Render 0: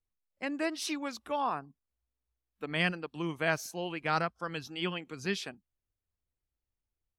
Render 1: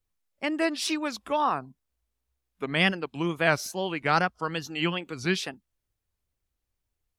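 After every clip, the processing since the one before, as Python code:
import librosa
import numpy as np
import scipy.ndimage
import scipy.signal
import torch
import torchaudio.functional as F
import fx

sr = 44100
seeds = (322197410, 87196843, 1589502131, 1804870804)

y = fx.wow_flutter(x, sr, seeds[0], rate_hz=2.1, depth_cents=130.0)
y = y * 10.0 ** (6.5 / 20.0)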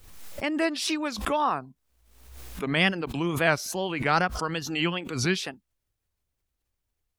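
y = fx.pre_swell(x, sr, db_per_s=58.0)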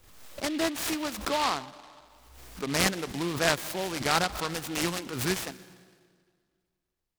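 y = fx.low_shelf(x, sr, hz=150.0, db=-6.0)
y = fx.rev_plate(y, sr, seeds[1], rt60_s=2.0, hf_ratio=0.65, predelay_ms=110, drr_db=18.0)
y = fx.noise_mod_delay(y, sr, seeds[2], noise_hz=2700.0, depth_ms=0.088)
y = y * 10.0 ** (-2.0 / 20.0)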